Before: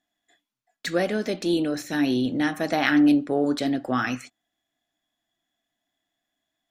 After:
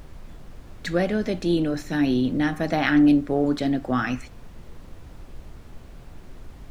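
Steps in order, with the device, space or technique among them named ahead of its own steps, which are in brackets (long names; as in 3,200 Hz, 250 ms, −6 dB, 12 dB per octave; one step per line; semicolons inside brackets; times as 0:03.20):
car interior (parametric band 160 Hz +7.5 dB; high-shelf EQ 4,900 Hz −7.5 dB; brown noise bed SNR 14 dB)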